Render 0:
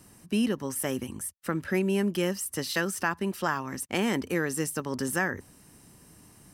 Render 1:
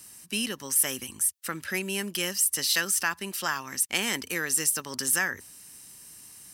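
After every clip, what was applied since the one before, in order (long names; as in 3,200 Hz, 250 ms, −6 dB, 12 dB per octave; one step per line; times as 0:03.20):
tilt shelving filter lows −10 dB, about 1,500 Hz
level +1 dB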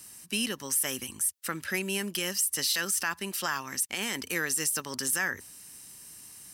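brickwall limiter −17 dBFS, peak gain reduction 9.5 dB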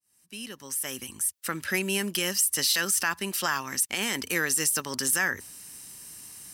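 fade in at the beginning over 1.75 s
level +3.5 dB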